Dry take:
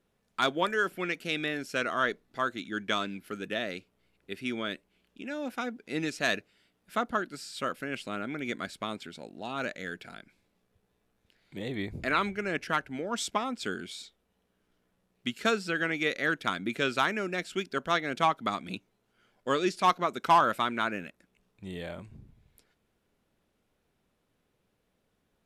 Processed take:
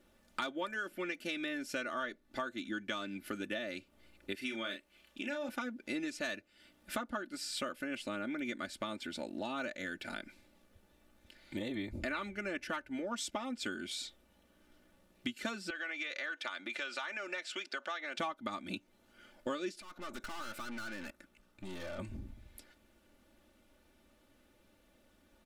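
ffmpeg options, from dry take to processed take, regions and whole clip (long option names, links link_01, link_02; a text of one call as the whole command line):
ffmpeg -i in.wav -filter_complex "[0:a]asettb=1/sr,asplit=3[link_01][link_02][link_03];[link_01]atrim=end=4.354[link_04];[link_02]atrim=start=4.35:end=5.49,asetpts=PTS-STARTPTS,afade=type=in:duration=0.004:curve=qsin,afade=type=out:start_time=1.136:duration=0.004:curve=qsin,lowshelf=frequency=410:gain=-10,asplit=2[link_05][link_06];[link_06]adelay=35,volume=-7dB[link_07];[link_05][link_07]amix=inputs=2:normalize=0,atrim=end_sample=50274[link_08];[link_03]atrim=start=5.486[link_09];[link_04][link_08]acrossfade=duration=0.004:curve1=hsin:curve2=qsin[link_10];[link_10][link_09]acrossfade=duration=0.004:curve1=qsin:curve2=hsin,asettb=1/sr,asplit=3[link_11][link_12][link_13];[link_11]atrim=end=15.704[link_14];[link_12]atrim=start=15.7:end=18.19,asetpts=PTS-STARTPTS,afade=type=in:duration=0.004:curve=qsin,afade=type=out:start_time=2.486:duration=0.004:curve=qsin,acompressor=threshold=-32dB:ratio=4:attack=3.2:release=140:knee=1:detection=peak,highpass=680,lowpass=6600[link_15];[link_13]atrim=start=18.186[link_16];[link_14][link_15]acrossfade=duration=0.004:curve1=hsin:curve2=qsin[link_17];[link_17][link_16]acrossfade=duration=0.004:curve1=qsin:curve2=hsin,asettb=1/sr,asplit=3[link_18][link_19][link_20];[link_18]atrim=end=19.814[link_21];[link_19]atrim=start=19.81:end=21.99,asetpts=PTS-STARTPTS,afade=type=in:duration=0.004:curve=qsin,afade=type=out:start_time=2.176:duration=0.004:curve=qsin,acompressor=threshold=-39dB:ratio=4:attack=3.2:release=140:knee=1:detection=peak,equalizer=frequency=1400:width_type=o:width=0.39:gain=6.5,aeval=exprs='(tanh(251*val(0)+0.7)-tanh(0.7))/251':channel_layout=same[link_22];[link_20]atrim=start=21.986[link_23];[link_21][link_22]acrossfade=duration=0.004:curve1=hsin:curve2=qsin[link_24];[link_24][link_23]acrossfade=duration=0.004:curve1=qsin:curve2=hsin,bandreject=frequency=980:width=19,aecho=1:1:3.4:0.76,acompressor=threshold=-43dB:ratio=6,volume=6dB" out.wav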